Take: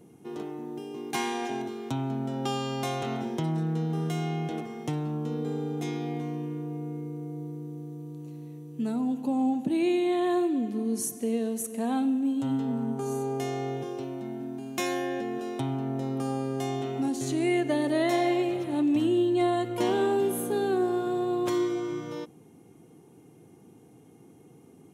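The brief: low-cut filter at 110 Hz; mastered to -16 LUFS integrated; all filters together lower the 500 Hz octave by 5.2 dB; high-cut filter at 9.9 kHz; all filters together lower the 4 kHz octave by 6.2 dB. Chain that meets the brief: high-pass 110 Hz; low-pass 9.9 kHz; peaking EQ 500 Hz -8.5 dB; peaking EQ 4 kHz -8.5 dB; trim +17 dB

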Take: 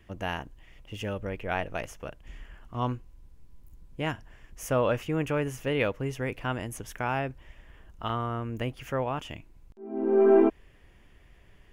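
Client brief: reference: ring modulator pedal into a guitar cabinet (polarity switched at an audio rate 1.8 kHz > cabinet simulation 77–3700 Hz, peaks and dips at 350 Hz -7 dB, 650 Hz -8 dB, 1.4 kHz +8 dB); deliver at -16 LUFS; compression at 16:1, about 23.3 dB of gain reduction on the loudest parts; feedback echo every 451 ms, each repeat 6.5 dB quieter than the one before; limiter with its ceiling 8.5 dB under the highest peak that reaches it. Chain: compression 16:1, threshold -39 dBFS; peak limiter -35.5 dBFS; feedback delay 451 ms, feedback 47%, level -6.5 dB; polarity switched at an audio rate 1.8 kHz; cabinet simulation 77–3700 Hz, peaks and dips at 350 Hz -7 dB, 650 Hz -8 dB, 1.4 kHz +8 dB; trim +26 dB

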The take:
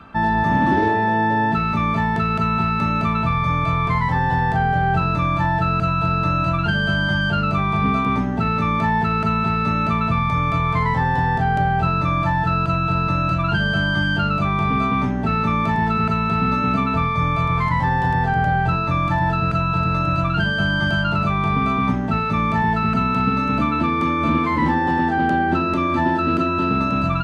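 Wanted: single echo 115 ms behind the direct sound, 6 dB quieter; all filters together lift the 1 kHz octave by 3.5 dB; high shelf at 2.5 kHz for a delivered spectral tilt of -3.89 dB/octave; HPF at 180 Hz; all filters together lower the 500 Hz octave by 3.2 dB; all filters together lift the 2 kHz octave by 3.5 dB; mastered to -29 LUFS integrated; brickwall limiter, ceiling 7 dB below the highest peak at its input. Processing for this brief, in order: high-pass 180 Hz; peaking EQ 500 Hz -6.5 dB; peaking EQ 1 kHz +5.5 dB; peaking EQ 2 kHz +5.5 dB; treble shelf 2.5 kHz -5.5 dB; peak limiter -13.5 dBFS; delay 115 ms -6 dB; trim -9.5 dB

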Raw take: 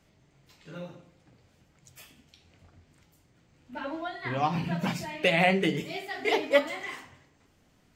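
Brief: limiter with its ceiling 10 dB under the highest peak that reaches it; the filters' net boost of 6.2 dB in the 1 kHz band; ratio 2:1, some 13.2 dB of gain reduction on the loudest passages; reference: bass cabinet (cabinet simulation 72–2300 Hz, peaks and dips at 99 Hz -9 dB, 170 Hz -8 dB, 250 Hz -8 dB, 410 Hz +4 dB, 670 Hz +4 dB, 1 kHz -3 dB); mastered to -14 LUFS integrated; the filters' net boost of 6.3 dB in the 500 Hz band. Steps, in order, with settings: peaking EQ 500 Hz +3.5 dB; peaking EQ 1 kHz +5.5 dB; compression 2:1, threshold -37 dBFS; peak limiter -28 dBFS; cabinet simulation 72–2300 Hz, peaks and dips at 99 Hz -9 dB, 170 Hz -8 dB, 250 Hz -8 dB, 410 Hz +4 dB, 670 Hz +4 dB, 1 kHz -3 dB; trim +24.5 dB

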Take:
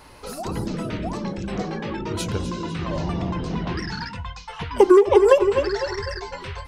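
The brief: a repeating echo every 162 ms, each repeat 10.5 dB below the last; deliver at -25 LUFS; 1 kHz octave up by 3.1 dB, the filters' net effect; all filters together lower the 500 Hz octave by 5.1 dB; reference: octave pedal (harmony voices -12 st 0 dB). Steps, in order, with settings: peaking EQ 500 Hz -8 dB; peaking EQ 1 kHz +5.5 dB; feedback delay 162 ms, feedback 30%, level -10.5 dB; harmony voices -12 st 0 dB; trim -2.5 dB

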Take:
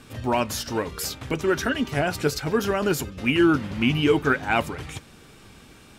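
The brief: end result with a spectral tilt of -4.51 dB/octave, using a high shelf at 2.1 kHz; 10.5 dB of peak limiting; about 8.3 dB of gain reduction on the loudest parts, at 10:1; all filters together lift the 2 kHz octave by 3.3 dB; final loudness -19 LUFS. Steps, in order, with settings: peaking EQ 2 kHz +7 dB; treble shelf 2.1 kHz -4 dB; compression 10:1, threshold -22 dBFS; trim +13.5 dB; peak limiter -9.5 dBFS

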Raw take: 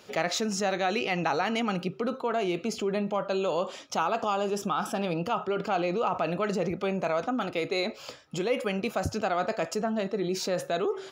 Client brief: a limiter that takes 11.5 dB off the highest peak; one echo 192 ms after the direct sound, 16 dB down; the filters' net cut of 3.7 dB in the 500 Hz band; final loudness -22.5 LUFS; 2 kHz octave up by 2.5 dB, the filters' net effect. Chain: peaking EQ 500 Hz -5 dB; peaking EQ 2 kHz +3.5 dB; peak limiter -24 dBFS; delay 192 ms -16 dB; trim +11 dB

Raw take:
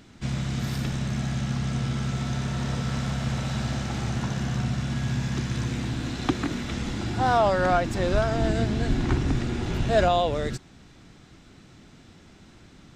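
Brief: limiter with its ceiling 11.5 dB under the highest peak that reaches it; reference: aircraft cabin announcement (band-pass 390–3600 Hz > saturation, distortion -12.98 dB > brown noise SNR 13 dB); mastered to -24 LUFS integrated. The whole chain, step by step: peak limiter -22 dBFS; band-pass 390–3600 Hz; saturation -30.5 dBFS; brown noise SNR 13 dB; trim +15 dB

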